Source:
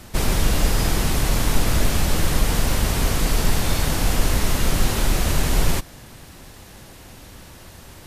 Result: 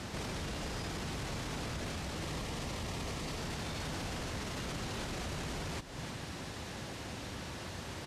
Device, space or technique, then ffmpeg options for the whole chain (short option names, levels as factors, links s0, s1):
podcast mastering chain: -filter_complex "[0:a]lowpass=6500,asettb=1/sr,asplit=3[s0][s1][s2];[s0]atrim=end=2.224[s3];[s1]atrim=start=2.22:end=3.37,asetpts=PTS-STARTPTS,afade=t=in:d=0.004:c=qsin,afade=t=out:st=1.146:d=0.004:c=qsin,bandreject=f=1500:w=7.2[s4];[s2]atrim=start=3.366[s5];[s3][s4]acrossfade=d=0.004:c1=hsin:c2=qsin[s6];[s6][s5]acrossfade=d=0.004:c1=qsin:c2=hsin,highpass=78,aecho=1:1:306:0.0944,acompressor=threshold=0.0141:ratio=4,alimiter=level_in=2.66:limit=0.0631:level=0:latency=1:release=10,volume=0.376,volume=1.26" -ar 48000 -c:a libmp3lame -b:a 96k